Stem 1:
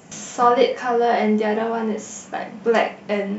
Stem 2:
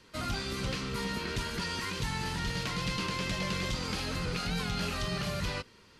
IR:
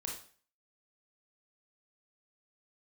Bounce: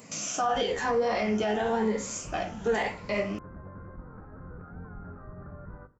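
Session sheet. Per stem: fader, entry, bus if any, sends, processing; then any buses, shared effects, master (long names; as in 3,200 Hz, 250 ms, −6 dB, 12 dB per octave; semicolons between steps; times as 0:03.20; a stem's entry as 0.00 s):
−1.0 dB, 0.00 s, no send, rippled gain that drifts along the octave scale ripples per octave 0.96, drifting +0.98 Hz, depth 9 dB; flanger 1.7 Hz, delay 8 ms, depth 7.6 ms, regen +69%; high-shelf EQ 3,700 Hz +9.5 dB
−12.0 dB, 0.25 s, send −14.5 dB, sub-octave generator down 1 octave, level +1 dB; elliptic low-pass filter 1,500 Hz, stop band 50 dB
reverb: on, RT60 0.45 s, pre-delay 22 ms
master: brickwall limiter −18.5 dBFS, peak gain reduction 11.5 dB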